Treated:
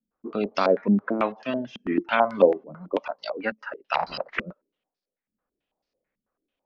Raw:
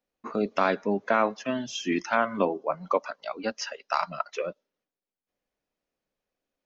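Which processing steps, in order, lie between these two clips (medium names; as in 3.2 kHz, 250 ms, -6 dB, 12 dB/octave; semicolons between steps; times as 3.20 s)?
3.94–4.40 s: spectral peaks clipped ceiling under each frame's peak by 26 dB; step-sequenced low-pass 9.1 Hz 220–4800 Hz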